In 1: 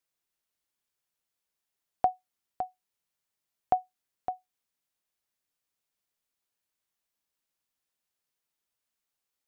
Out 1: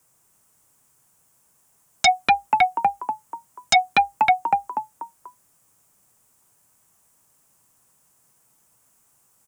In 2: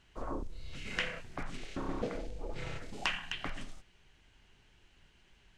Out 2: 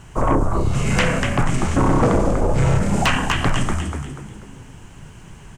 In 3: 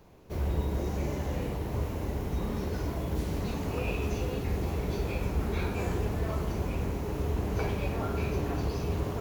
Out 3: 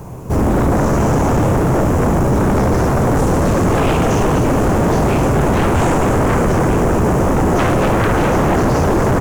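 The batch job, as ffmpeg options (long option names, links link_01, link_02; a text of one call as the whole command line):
ffmpeg -i in.wav -filter_complex "[0:a]equalizer=frequency=125:width_type=o:width=1:gain=11,equalizer=frequency=1000:width_type=o:width=1:gain=5,equalizer=frequency=2000:width_type=o:width=1:gain=-4,equalizer=frequency=4000:width_type=o:width=1:gain=-12,equalizer=frequency=8000:width_type=o:width=1:gain=9,asplit=5[link_01][link_02][link_03][link_04][link_05];[link_02]adelay=243,afreqshift=63,volume=-7.5dB[link_06];[link_03]adelay=486,afreqshift=126,volume=-15.9dB[link_07];[link_04]adelay=729,afreqshift=189,volume=-24.3dB[link_08];[link_05]adelay=972,afreqshift=252,volume=-32.7dB[link_09];[link_01][link_06][link_07][link_08][link_09]amix=inputs=5:normalize=0,aeval=exprs='0.299*sin(PI/2*7.08*val(0)/0.299)':channel_layout=same,acrossover=split=9300[link_10][link_11];[link_11]acompressor=threshold=-41dB:ratio=4:attack=1:release=60[link_12];[link_10][link_12]amix=inputs=2:normalize=0" out.wav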